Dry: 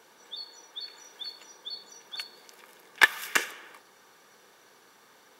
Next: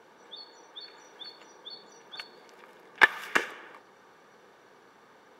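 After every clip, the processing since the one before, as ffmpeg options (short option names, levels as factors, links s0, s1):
-af "lowpass=f=1300:p=1,volume=1.68"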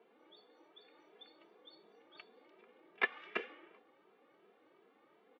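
-filter_complex "[0:a]highpass=220,equalizer=f=310:t=q:w=4:g=6,equalizer=f=960:t=q:w=4:g=-8,equalizer=f=1600:t=q:w=4:g=-10,lowpass=f=3100:w=0.5412,lowpass=f=3100:w=1.3066,asplit=2[s0][s1];[s1]adelay=2.6,afreqshift=2.7[s2];[s0][s2]amix=inputs=2:normalize=1,volume=0.501"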